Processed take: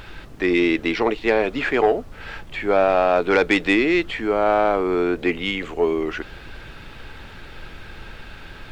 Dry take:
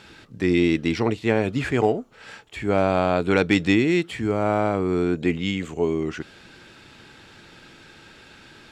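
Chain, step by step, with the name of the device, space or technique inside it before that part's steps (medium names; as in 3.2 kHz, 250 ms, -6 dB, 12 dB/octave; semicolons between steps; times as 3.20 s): aircraft cabin announcement (band-pass 410–3400 Hz; saturation -14 dBFS, distortion -18 dB; brown noise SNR 16 dB); trim +7 dB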